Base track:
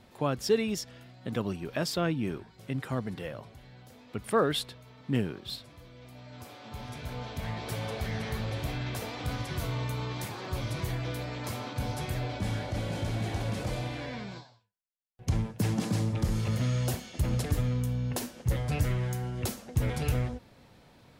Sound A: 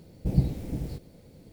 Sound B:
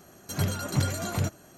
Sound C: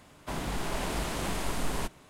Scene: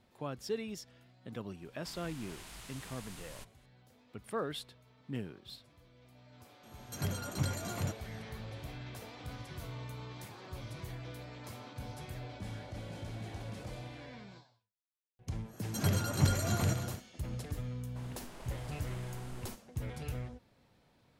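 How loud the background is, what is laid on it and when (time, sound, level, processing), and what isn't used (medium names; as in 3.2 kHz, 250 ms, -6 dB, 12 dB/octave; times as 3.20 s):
base track -11 dB
1.57 s: add C -5 dB + amplifier tone stack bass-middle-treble 5-5-5
6.63 s: add B -8 dB
15.45 s: add B -3.5 dB, fades 0.10 s + backward echo that repeats 156 ms, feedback 68%, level -10 dB
17.68 s: add C -17.5 dB
not used: A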